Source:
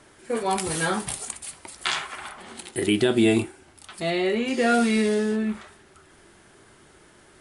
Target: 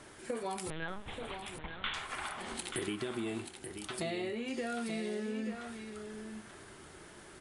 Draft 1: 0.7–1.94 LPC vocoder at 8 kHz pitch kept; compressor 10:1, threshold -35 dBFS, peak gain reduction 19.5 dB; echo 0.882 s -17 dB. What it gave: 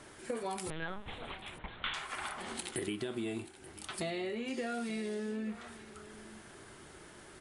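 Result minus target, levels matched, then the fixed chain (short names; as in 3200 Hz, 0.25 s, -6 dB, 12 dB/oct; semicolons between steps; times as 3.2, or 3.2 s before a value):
echo-to-direct -9 dB
0.7–1.94 LPC vocoder at 8 kHz pitch kept; compressor 10:1, threshold -35 dBFS, peak gain reduction 19.5 dB; echo 0.882 s -8 dB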